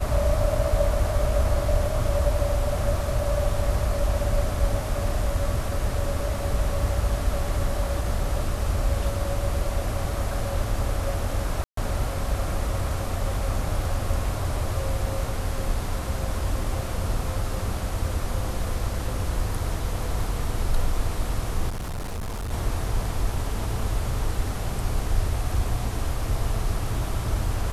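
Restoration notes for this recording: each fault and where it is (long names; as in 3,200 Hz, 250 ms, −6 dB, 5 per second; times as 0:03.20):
0:11.64–0:11.77: drop-out 133 ms
0:21.69–0:22.52: clipping −27.5 dBFS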